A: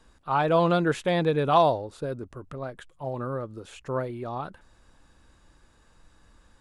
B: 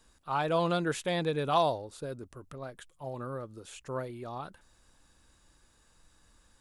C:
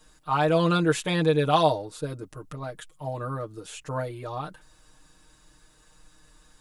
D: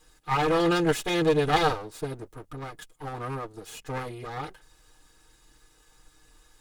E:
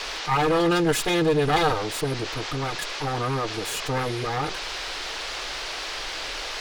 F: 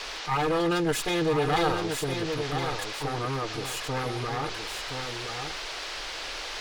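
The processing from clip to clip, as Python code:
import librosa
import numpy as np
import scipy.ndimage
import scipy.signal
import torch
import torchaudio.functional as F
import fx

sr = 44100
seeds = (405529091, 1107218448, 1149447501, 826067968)

y1 = fx.high_shelf(x, sr, hz=4100.0, db=12.0)
y1 = y1 * librosa.db_to_amplitude(-7.0)
y2 = y1 + 0.94 * np.pad(y1, (int(6.5 * sr / 1000.0), 0))[:len(y1)]
y2 = y2 * librosa.db_to_amplitude(4.0)
y3 = fx.lower_of_two(y2, sr, delay_ms=2.4)
y4 = fx.dmg_noise_band(y3, sr, seeds[0], low_hz=360.0, high_hz=5100.0, level_db=-47.0)
y4 = fx.env_flatten(y4, sr, amount_pct=50)
y5 = y4 + 10.0 ** (-6.5 / 20.0) * np.pad(y4, (int(1020 * sr / 1000.0), 0))[:len(y4)]
y5 = y5 * librosa.db_to_amplitude(-4.5)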